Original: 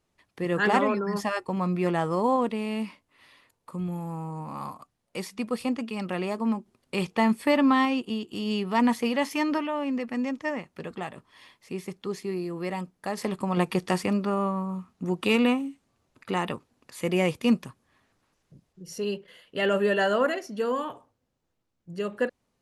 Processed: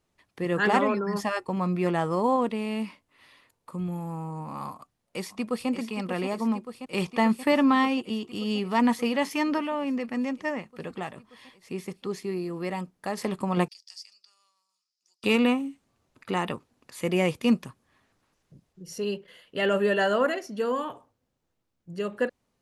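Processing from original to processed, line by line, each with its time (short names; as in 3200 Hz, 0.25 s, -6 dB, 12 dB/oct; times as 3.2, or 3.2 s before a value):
4.72–5.69 echo throw 0.58 s, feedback 80%, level -8.5 dB
13.68–15.24 ladder band-pass 5300 Hz, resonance 80%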